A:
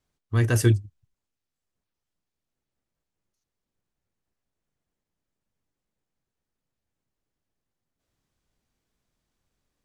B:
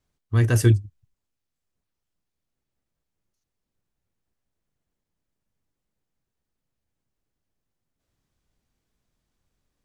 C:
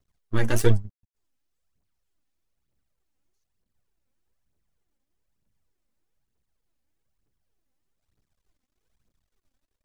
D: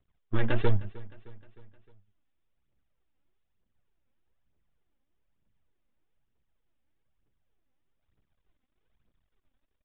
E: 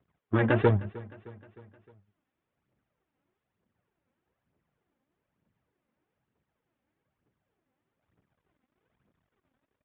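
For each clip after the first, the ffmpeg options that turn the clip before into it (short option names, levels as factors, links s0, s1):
-af "lowshelf=f=180:g=4"
-af "aeval=exprs='max(val(0),0)':c=same,aphaser=in_gain=1:out_gain=1:delay=4:decay=0.57:speed=1.1:type=triangular"
-af "aresample=8000,asoftclip=type=tanh:threshold=0.224,aresample=44100,aecho=1:1:308|616|924|1232:0.0944|0.0519|0.0286|0.0157"
-af "highpass=120,lowpass=2100,volume=2.24"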